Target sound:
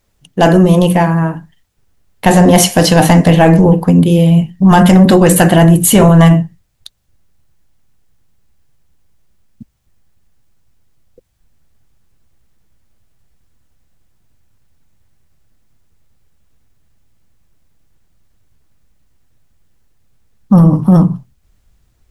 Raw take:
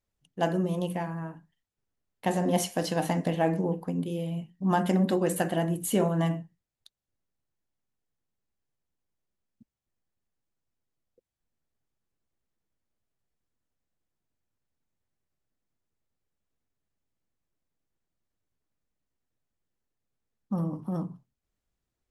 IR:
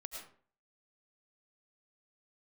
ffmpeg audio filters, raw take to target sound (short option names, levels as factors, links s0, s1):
-af "asubboost=boost=2.5:cutoff=170,apsyclip=15,volume=0.841"